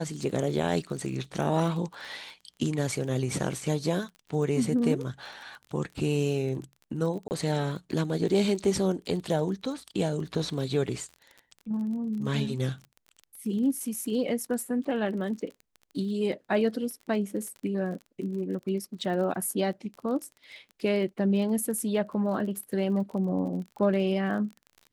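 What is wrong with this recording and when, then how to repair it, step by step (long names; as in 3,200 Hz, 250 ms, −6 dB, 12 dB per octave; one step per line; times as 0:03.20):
surface crackle 28 per second −37 dBFS
0:07.28–0:07.31: drop-out 29 ms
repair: click removal
repair the gap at 0:07.28, 29 ms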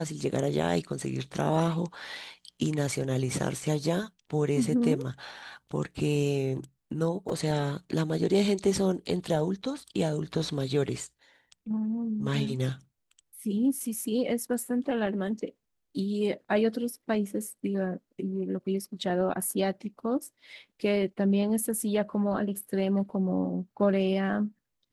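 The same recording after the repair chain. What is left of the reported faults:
none of them is left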